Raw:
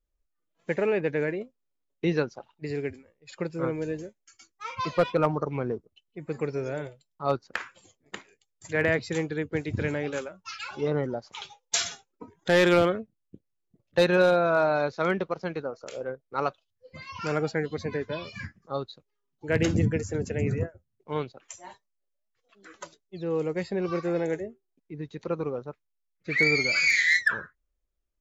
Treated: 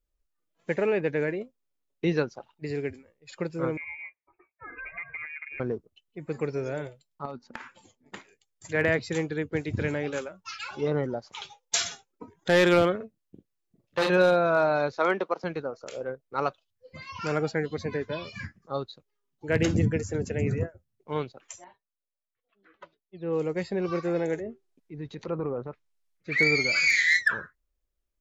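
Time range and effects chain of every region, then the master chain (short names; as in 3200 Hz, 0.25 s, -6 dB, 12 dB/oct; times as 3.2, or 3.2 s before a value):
3.77–5.6 compressor 4:1, threshold -36 dBFS + notch comb 1200 Hz + inverted band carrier 2600 Hz
7.25–8.15 high shelf 6400 Hz -6 dB + compressor 5:1, threshold -36 dBFS + small resonant body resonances 240/880 Hz, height 13 dB, ringing for 0.1 s
12.96–14.1 low shelf 180 Hz -6 dB + doubler 43 ms -3.5 dB + core saturation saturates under 1600 Hz
14.98–15.44 HPF 240 Hz 24 dB/oct + bell 930 Hz +5.5 dB 0.97 oct
21.64–23.33 LPF 3300 Hz 24 dB/oct + upward expander, over -49 dBFS
24.37–26.32 transient shaper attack -3 dB, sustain +6 dB + treble ducked by the level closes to 1700 Hz, closed at -28 dBFS
whole clip: dry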